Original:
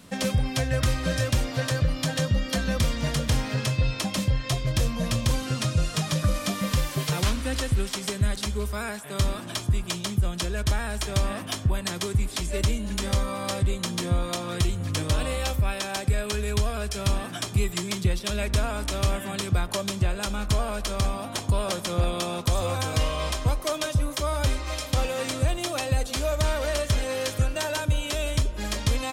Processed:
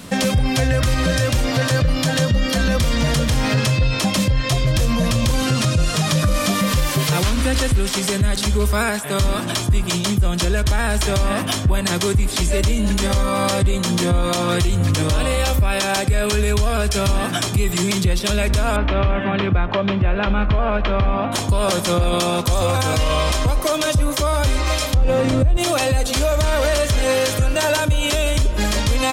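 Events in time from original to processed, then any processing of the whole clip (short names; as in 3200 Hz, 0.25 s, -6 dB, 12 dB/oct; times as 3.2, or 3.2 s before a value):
18.76–21.32 LPF 2800 Hz 24 dB/oct
24.94–25.57 tilt -3.5 dB/oct
whole clip: maximiser +21.5 dB; gain -8.5 dB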